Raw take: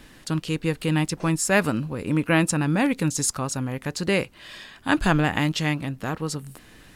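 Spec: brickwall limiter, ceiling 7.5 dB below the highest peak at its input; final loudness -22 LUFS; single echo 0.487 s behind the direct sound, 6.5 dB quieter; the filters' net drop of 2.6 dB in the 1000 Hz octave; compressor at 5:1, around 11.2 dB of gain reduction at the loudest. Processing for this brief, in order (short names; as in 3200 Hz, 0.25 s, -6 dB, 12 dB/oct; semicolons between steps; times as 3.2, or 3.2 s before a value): bell 1000 Hz -3.5 dB; compressor 5:1, threshold -29 dBFS; limiter -24 dBFS; echo 0.487 s -6.5 dB; gain +12 dB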